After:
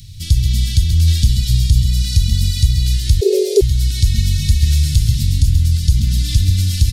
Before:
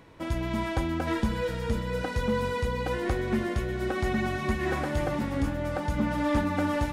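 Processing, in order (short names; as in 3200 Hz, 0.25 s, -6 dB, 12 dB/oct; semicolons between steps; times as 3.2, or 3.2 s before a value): Chebyshev band-stop 110–4200 Hz, order 3; in parallel at +1 dB: compressor, threshold -38 dBFS, peak gain reduction 12.5 dB; on the sum: outdoor echo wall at 23 m, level -7 dB; 3.21–3.61 frequency shift +330 Hz; maximiser +19.5 dB; gain -1 dB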